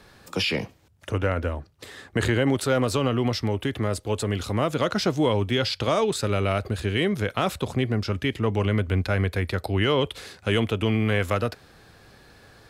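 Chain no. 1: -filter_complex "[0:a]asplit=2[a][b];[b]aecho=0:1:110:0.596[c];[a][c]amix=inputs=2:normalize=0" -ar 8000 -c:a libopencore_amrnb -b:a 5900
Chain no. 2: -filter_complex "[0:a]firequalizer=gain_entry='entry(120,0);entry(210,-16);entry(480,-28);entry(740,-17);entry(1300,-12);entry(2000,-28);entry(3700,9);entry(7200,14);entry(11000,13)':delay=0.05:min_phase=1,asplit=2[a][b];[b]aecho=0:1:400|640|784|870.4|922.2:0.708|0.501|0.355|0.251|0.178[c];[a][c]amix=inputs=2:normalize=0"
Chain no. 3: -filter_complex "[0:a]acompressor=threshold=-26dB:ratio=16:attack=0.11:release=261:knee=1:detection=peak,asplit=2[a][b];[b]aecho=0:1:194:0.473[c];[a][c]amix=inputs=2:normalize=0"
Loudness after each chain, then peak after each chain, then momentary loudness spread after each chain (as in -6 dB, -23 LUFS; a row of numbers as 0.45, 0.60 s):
-25.5, -23.5, -35.0 LUFS; -9.0, -5.0, -22.0 dBFS; 9, 10, 7 LU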